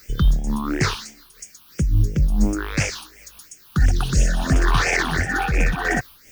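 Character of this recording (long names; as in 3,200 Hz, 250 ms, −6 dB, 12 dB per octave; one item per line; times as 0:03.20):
a quantiser's noise floor 8 bits, dither triangular
phaser sweep stages 6, 2.9 Hz, lowest notch 520–1,100 Hz
amplitude modulation by smooth noise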